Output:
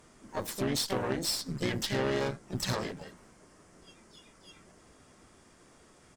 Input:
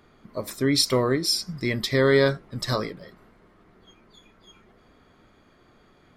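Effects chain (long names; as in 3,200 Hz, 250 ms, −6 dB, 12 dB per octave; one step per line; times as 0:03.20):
downward compressor 5 to 1, threshold −27 dBFS, peak gain reduction 12 dB
pitch-shifted copies added −3 semitones −5 dB, +7 semitones −5 dB
noise in a band 4,700–9,700 Hz −64 dBFS
harmonic generator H 4 −16 dB, 6 −13 dB, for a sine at −14 dBFS
level −4 dB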